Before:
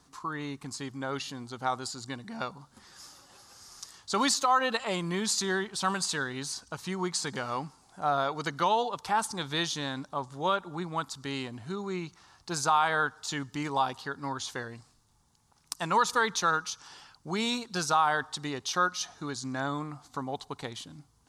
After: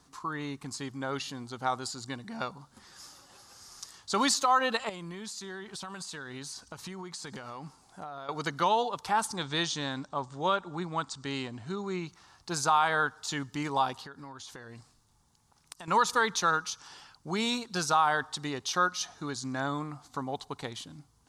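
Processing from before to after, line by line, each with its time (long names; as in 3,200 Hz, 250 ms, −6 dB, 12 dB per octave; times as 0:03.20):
0:04.89–0:08.29: downward compressor 12 to 1, threshold −37 dBFS
0:09.36–0:12.06: linear-phase brick-wall low-pass 9,100 Hz
0:14.03–0:15.88: downward compressor, threshold −42 dBFS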